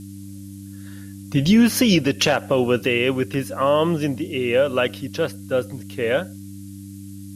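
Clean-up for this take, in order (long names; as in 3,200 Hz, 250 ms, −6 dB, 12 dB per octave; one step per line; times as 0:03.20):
hum removal 98.4 Hz, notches 3
noise reduction from a noise print 29 dB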